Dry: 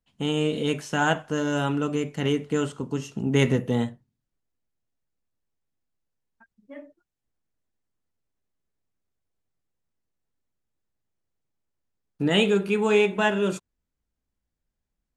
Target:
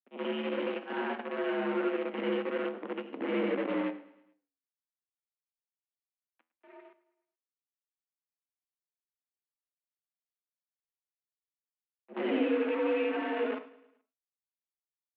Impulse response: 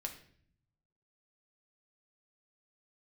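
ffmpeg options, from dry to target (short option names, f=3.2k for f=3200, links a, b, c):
-filter_complex "[0:a]afftfilt=real='re':imag='-im':win_size=8192:overlap=0.75,acrossover=split=450[a][b];[b]alimiter=level_in=4.5dB:limit=-24dB:level=0:latency=1:release=73,volume=-4.5dB[c];[a][c]amix=inputs=2:normalize=0,acrusher=bits=6:dc=4:mix=0:aa=0.000001,flanger=delay=8.5:depth=6.8:regen=80:speed=0.57:shape=triangular,asplit=2[d][e];[e]aecho=0:1:107|214|321|428:0.1|0.053|0.0281|0.0149[f];[d][f]amix=inputs=2:normalize=0,highpass=f=150:t=q:w=0.5412,highpass=f=150:t=q:w=1.307,lowpass=f=2.7k:t=q:w=0.5176,lowpass=f=2.7k:t=q:w=0.7071,lowpass=f=2.7k:t=q:w=1.932,afreqshift=69,volume=2.5dB"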